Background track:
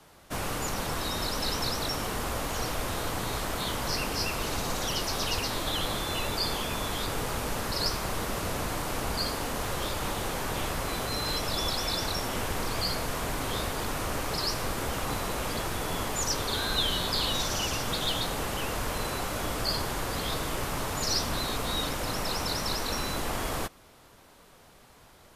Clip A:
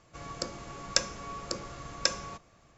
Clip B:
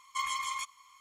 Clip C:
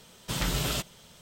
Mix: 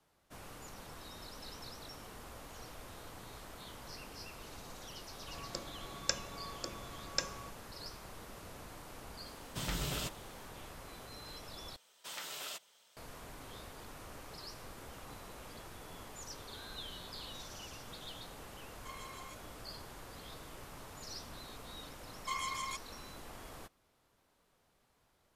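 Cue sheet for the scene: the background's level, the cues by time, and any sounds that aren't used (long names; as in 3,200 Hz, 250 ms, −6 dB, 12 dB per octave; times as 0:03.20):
background track −18.5 dB
0:05.13: mix in A −7.5 dB
0:09.27: mix in C −8.5 dB
0:11.76: overwrite with C −11.5 dB + high-pass filter 620 Hz
0:18.70: mix in B −17 dB
0:22.12: mix in B −5 dB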